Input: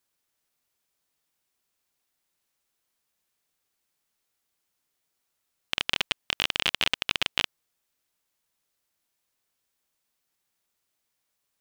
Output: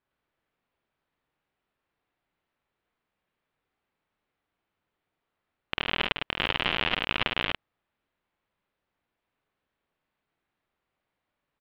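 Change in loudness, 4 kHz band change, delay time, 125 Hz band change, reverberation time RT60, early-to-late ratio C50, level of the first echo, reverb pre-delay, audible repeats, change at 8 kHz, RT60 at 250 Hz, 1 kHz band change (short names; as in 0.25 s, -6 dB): -1.0 dB, -3.0 dB, 50 ms, +7.0 dB, none, none, -5.0 dB, none, 2, under -20 dB, none, +4.5 dB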